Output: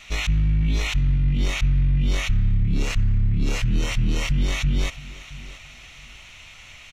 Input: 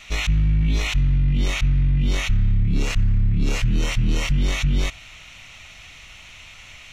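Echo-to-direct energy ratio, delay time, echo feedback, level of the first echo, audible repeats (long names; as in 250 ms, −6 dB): −18.0 dB, 672 ms, 24%, −18.0 dB, 2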